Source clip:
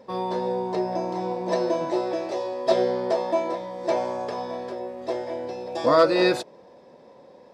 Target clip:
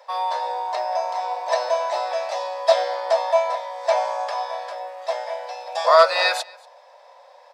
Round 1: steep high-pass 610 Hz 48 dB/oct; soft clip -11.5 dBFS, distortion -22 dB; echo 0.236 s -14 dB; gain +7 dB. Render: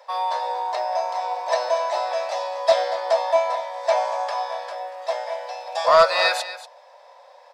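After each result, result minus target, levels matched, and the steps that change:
soft clip: distortion +15 dB; echo-to-direct +11.5 dB
change: soft clip -3 dBFS, distortion -37 dB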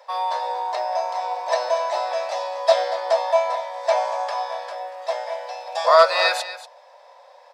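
echo-to-direct +11.5 dB
change: echo 0.236 s -25.5 dB

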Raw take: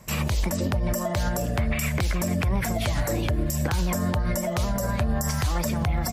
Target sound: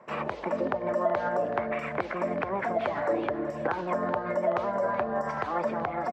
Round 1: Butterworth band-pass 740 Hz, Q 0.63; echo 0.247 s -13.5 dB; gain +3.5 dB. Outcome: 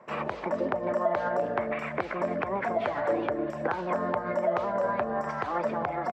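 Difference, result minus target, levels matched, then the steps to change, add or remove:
echo 0.13 s early
change: echo 0.377 s -13.5 dB

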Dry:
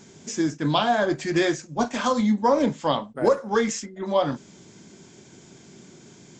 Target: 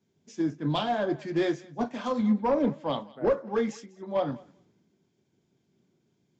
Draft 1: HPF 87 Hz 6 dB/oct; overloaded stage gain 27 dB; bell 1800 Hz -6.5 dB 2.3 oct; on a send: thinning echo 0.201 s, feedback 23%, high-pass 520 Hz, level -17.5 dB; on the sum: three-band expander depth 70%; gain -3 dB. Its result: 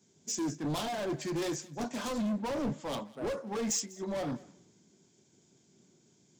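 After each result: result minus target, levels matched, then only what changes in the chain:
overloaded stage: distortion +12 dB; 4000 Hz band +5.0 dB
change: overloaded stage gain 15.5 dB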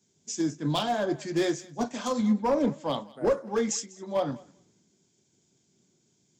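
4000 Hz band +3.5 dB
add after overloaded stage: LPF 3100 Hz 12 dB/oct

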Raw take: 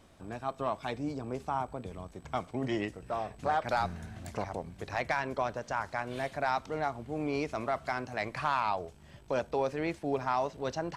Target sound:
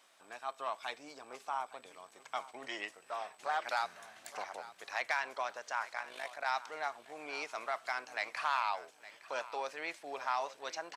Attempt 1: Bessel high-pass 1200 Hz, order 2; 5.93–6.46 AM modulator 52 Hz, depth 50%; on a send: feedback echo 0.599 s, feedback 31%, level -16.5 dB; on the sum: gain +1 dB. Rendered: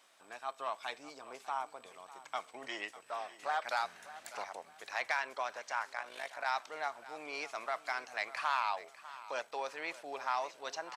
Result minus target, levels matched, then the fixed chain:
echo 0.264 s early
Bessel high-pass 1200 Hz, order 2; 5.93–6.46 AM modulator 52 Hz, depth 50%; on a send: feedback echo 0.863 s, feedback 31%, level -16.5 dB; on the sum: gain +1 dB

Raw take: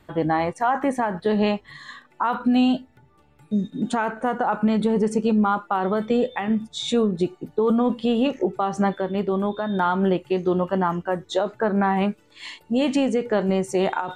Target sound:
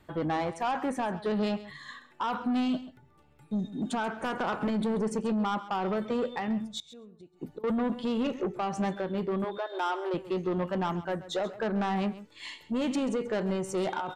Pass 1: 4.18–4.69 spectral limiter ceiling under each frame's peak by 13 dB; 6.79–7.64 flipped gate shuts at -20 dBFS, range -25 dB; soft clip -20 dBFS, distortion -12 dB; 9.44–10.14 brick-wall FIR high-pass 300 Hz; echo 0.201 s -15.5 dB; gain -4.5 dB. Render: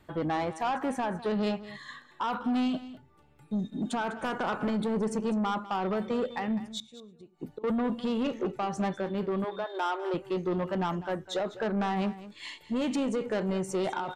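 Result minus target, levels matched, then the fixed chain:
echo 67 ms late
4.18–4.69 spectral limiter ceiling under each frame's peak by 13 dB; 6.79–7.64 flipped gate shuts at -20 dBFS, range -25 dB; soft clip -20 dBFS, distortion -12 dB; 9.44–10.14 brick-wall FIR high-pass 300 Hz; echo 0.134 s -15.5 dB; gain -4.5 dB

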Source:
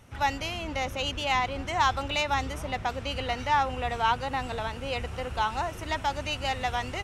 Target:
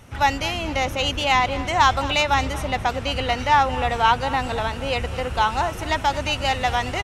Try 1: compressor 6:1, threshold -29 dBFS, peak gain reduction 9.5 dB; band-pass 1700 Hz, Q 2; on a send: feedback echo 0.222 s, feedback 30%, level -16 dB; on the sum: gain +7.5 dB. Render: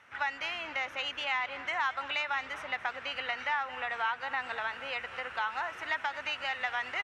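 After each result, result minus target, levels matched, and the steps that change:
compressor: peak gain reduction +9.5 dB; 2000 Hz band +5.0 dB
remove: compressor 6:1, threshold -29 dBFS, peak gain reduction 9.5 dB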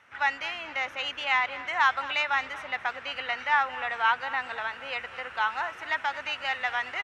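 2000 Hz band +5.0 dB
remove: band-pass 1700 Hz, Q 2

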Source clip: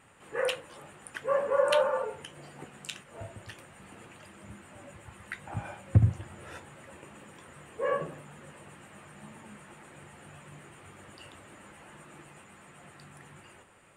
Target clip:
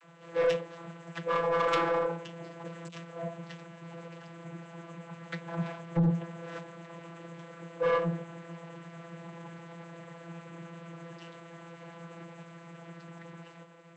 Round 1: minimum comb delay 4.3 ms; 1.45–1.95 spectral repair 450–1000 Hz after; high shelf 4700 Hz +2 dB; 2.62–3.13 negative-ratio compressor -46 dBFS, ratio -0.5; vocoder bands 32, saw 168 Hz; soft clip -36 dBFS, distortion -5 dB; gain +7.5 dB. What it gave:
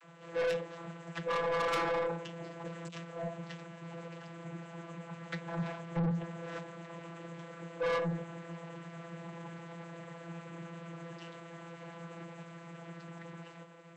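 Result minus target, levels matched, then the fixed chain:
soft clip: distortion +7 dB
minimum comb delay 4.3 ms; 1.45–1.95 spectral repair 450–1000 Hz after; high shelf 4700 Hz +2 dB; 2.62–3.13 negative-ratio compressor -46 dBFS, ratio -0.5; vocoder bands 32, saw 168 Hz; soft clip -28 dBFS, distortion -12 dB; gain +7.5 dB

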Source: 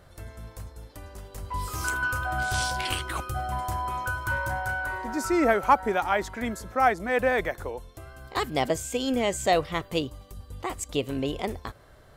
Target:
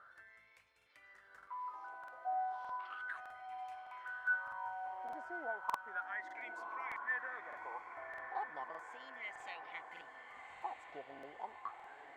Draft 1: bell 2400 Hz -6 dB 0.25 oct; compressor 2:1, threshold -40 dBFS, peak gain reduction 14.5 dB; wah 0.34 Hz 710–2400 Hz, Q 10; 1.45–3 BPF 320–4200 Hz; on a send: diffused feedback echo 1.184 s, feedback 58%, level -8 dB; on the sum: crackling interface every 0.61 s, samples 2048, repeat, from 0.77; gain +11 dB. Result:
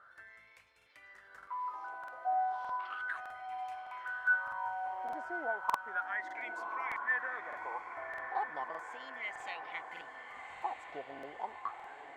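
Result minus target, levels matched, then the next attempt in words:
compressor: peak gain reduction -5.5 dB
bell 2400 Hz -6 dB 0.25 oct; compressor 2:1, threshold -51 dBFS, peak gain reduction 20 dB; wah 0.34 Hz 710–2400 Hz, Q 10; 1.45–3 BPF 320–4200 Hz; on a send: diffused feedback echo 1.184 s, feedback 58%, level -8 dB; on the sum: crackling interface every 0.61 s, samples 2048, repeat, from 0.77; gain +11 dB

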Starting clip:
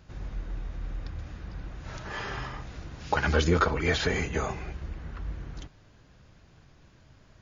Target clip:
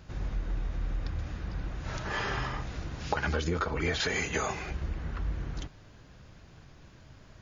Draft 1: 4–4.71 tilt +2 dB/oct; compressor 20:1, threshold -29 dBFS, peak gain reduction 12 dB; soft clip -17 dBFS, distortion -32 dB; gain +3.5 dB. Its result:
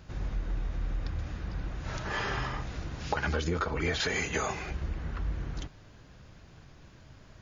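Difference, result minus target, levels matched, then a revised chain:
soft clip: distortion +12 dB
4–4.71 tilt +2 dB/oct; compressor 20:1, threshold -29 dBFS, peak gain reduction 12 dB; soft clip -10 dBFS, distortion -45 dB; gain +3.5 dB

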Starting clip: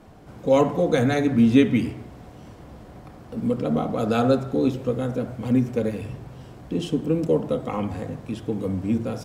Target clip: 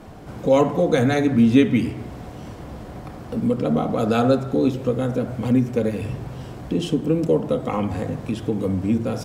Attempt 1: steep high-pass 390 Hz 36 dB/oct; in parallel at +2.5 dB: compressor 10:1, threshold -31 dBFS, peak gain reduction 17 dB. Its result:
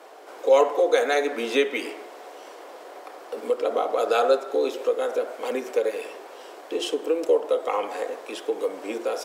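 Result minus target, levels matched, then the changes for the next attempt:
500 Hz band +4.0 dB
remove: steep high-pass 390 Hz 36 dB/oct

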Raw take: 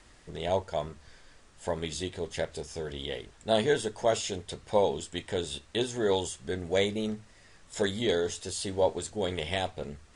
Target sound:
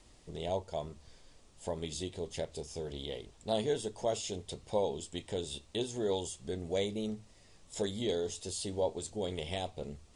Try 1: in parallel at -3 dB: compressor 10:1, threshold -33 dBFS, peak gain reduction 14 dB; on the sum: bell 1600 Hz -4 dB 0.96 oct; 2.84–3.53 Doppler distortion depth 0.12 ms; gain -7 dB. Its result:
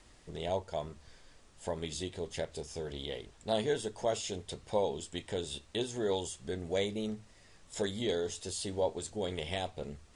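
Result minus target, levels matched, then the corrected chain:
2000 Hz band +4.0 dB
in parallel at -3 dB: compressor 10:1, threshold -33 dBFS, peak gain reduction 14 dB; on the sum: bell 1600 Hz -11 dB 0.96 oct; 2.84–3.53 Doppler distortion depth 0.12 ms; gain -7 dB

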